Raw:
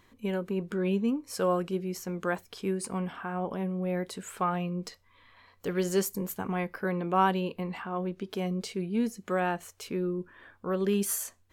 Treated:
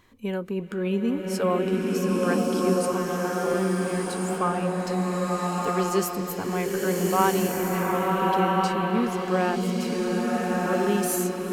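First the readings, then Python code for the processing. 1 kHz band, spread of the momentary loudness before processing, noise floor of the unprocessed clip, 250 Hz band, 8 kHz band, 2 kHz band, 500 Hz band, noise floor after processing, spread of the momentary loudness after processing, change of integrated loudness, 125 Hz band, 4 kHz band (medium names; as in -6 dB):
+7.0 dB, 7 LU, -63 dBFS, +6.0 dB, +5.0 dB, +7.0 dB, +7.0 dB, -32 dBFS, 5 LU, +6.0 dB, +5.5 dB, +7.0 dB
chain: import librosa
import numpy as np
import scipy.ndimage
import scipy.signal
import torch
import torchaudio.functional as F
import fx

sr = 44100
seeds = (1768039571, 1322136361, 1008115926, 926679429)

y = fx.rev_bloom(x, sr, seeds[0], attack_ms=1380, drr_db=-3.5)
y = y * 10.0 ** (2.0 / 20.0)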